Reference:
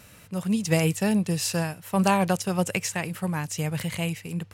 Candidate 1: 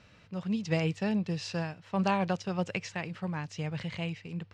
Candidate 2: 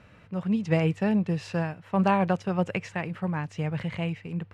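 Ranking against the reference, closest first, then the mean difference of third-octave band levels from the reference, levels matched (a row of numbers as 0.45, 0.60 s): 1, 2; 4.0, 6.0 dB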